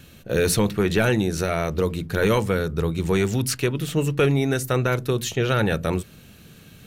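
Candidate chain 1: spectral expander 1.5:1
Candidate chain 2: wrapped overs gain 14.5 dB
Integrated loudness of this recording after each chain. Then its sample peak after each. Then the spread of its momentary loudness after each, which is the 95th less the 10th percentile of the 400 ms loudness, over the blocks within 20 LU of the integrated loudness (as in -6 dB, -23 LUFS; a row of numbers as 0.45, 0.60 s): -24.5, -22.5 LUFS; -9.5, -14.5 dBFS; 7, 5 LU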